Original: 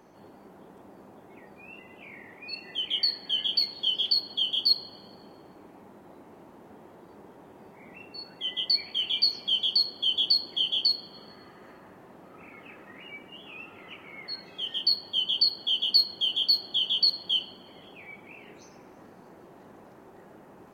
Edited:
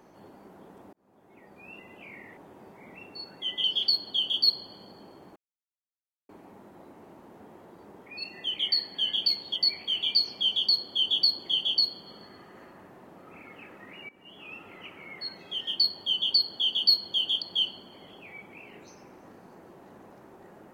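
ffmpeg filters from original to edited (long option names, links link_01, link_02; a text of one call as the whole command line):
ffmpeg -i in.wav -filter_complex "[0:a]asplit=9[link_01][link_02][link_03][link_04][link_05][link_06][link_07][link_08][link_09];[link_01]atrim=end=0.93,asetpts=PTS-STARTPTS,afade=type=out:start_time=0.926:duration=0.004:curve=hsin[link_10];[link_02]atrim=start=0.93:end=2.372,asetpts=PTS-STARTPTS,afade=type=in:duration=0.79[link_11];[link_03]atrim=start=7.358:end=8.632[link_12];[link_04]atrim=start=3.868:end=5.59,asetpts=PTS-STARTPTS,afade=type=out:start_time=1.718:duration=0.004:curve=hsin,apad=pad_dur=0.93[link_13];[link_05]atrim=start=5.59:end=7.362,asetpts=PTS-STARTPTS,afade=type=in:duration=0.004:curve=hsin[link_14];[link_06]atrim=start=2.368:end=3.872[link_15];[link_07]atrim=start=8.628:end=13.16,asetpts=PTS-STARTPTS,afade=type=out:start_time=4.528:duration=0.004:curve=hsin:silence=0.158489[link_16];[link_08]atrim=start=13.16:end=16.492,asetpts=PTS-STARTPTS,afade=type=in:duration=0.55:curve=qsin:silence=0.158489[link_17];[link_09]atrim=start=17.158[link_18];[link_10][link_11]concat=n=2:v=0:a=1[link_19];[link_19][link_12]acrossfade=duration=0.004:curve1=hsin:curve2=hsin[link_20];[link_13][link_14]concat=n=2:v=0:a=1[link_21];[link_20][link_21]acrossfade=duration=0.004:curve1=hsin:curve2=hsin[link_22];[link_22][link_15]acrossfade=duration=0.004:curve1=hsin:curve2=hsin[link_23];[link_16][link_17]concat=n=2:v=0:a=1[link_24];[link_23][link_24]acrossfade=duration=0.004:curve1=hsin:curve2=hsin[link_25];[link_25][link_18]acrossfade=duration=0.004:curve1=hsin:curve2=hsin" out.wav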